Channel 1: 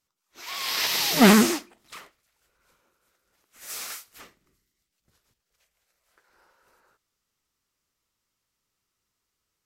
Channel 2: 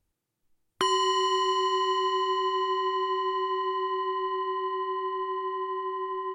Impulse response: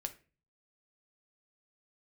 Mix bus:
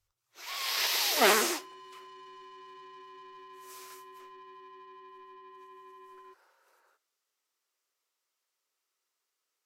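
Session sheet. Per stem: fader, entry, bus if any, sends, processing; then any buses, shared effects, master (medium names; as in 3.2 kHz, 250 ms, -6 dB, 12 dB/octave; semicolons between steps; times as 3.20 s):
1.59 s -7.5 dB -> 2.00 s -19.5 dB -> 5.42 s -19.5 dB -> 5.69 s -7 dB, 0.00 s, send -3.5 dB, high-pass 380 Hz 24 dB/octave
-17.0 dB, 0.00 s, no send, resonant low shelf 150 Hz +8.5 dB, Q 3; peak limiter -22 dBFS, peak gain reduction 8.5 dB; saturation -30 dBFS, distortion -13 dB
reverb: on, RT60 0.35 s, pre-delay 5 ms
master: none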